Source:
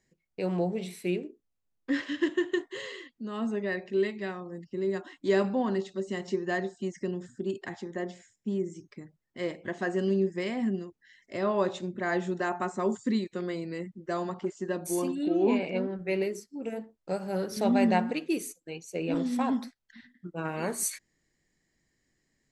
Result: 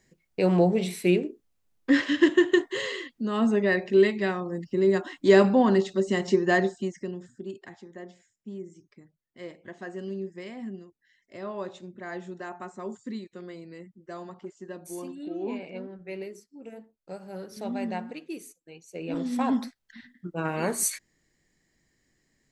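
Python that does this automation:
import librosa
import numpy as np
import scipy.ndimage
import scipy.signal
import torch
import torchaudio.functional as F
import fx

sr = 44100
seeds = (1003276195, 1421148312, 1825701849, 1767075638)

y = fx.gain(x, sr, db=fx.line((6.69, 8.0), (6.98, -1.0), (7.82, -8.0), (18.73, -8.0), (19.58, 4.0)))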